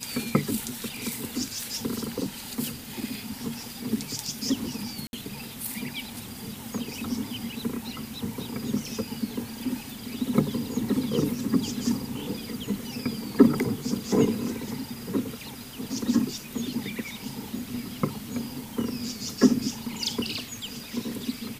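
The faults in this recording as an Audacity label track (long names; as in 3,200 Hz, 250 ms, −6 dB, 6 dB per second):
1.610000	1.610000	click
5.070000	5.130000	drop-out 61 ms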